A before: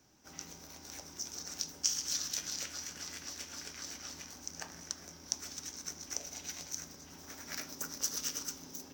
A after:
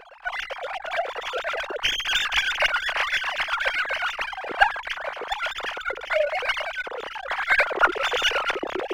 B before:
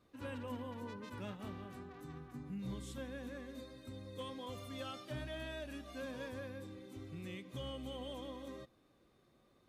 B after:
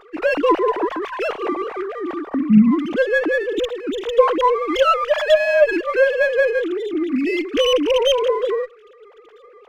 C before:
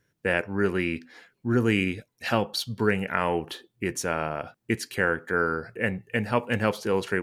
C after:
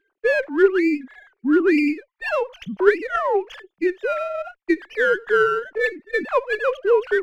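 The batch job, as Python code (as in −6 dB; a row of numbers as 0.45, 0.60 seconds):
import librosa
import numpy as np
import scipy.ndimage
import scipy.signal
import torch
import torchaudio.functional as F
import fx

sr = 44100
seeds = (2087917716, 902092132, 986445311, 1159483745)

y = fx.sine_speech(x, sr)
y = fx.running_max(y, sr, window=3)
y = librosa.util.normalize(y) * 10.0 ** (-2 / 20.0)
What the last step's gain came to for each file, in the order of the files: +16.5, +27.5, +6.5 decibels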